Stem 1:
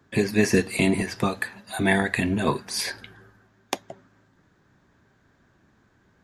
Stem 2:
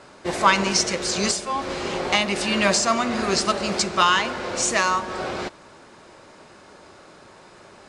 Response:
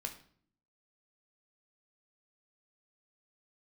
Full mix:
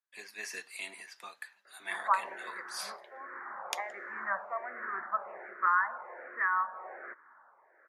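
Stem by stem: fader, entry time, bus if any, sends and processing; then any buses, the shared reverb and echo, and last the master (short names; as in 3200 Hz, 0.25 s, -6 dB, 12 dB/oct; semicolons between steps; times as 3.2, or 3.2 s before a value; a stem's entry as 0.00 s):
3.23 s -14 dB -> 3.85 s -3.5 dB, 0.00 s, no send, three-band expander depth 40%
-3.5 dB, 1.65 s, no send, steep low-pass 1900 Hz 72 dB/oct; endless phaser -1.3 Hz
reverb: off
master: HPF 1200 Hz 12 dB/oct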